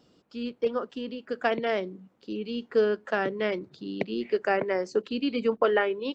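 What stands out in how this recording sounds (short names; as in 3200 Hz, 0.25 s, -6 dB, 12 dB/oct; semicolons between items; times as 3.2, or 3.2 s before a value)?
noise floor -65 dBFS; spectral tilt -3.0 dB/oct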